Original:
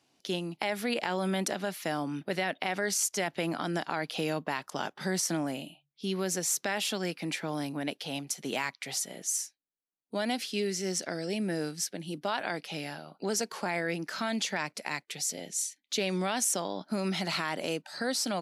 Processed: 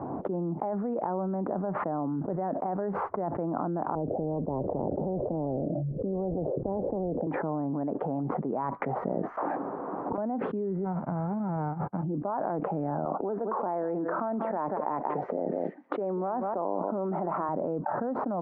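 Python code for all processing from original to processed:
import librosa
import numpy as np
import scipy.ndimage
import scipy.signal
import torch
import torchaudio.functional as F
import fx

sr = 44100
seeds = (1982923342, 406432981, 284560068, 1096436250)

y = fx.chain(x, sr, fx.cheby1_lowpass(hz=560.0, order=5),
    fx.spectral_comp(ratio=4.0), at=(3.95, 7.27))
y = fx.chain(y, sr, fx.highpass(hz=260.0, slope=12),
    fx.auto_swell(attack_ms=308.0),
    fx.spectral_comp(ratio=10.0), at=(9.37, 10.18))
y = fx.envelope_flatten(y, sr, power=0.1, at=(10.84, 12.02), fade=0.02)
y = fx.comb(y, sr, ms=1.4, depth=0.32, at=(10.84, 12.02), fade=0.02)
y = fx.upward_expand(y, sr, threshold_db=-49.0, expansion=2.5, at=(10.84, 12.02), fade=0.02)
y = fx.chain(y, sr, fx.highpass(hz=290.0, slope=12),
    fx.echo_single(ms=188, db=-18.5), at=(13.05, 17.49))
y = scipy.signal.sosfilt(scipy.signal.butter(6, 1100.0, 'lowpass', fs=sr, output='sos'), y)
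y = fx.env_flatten(y, sr, amount_pct=100)
y = y * 10.0 ** (-1.5 / 20.0)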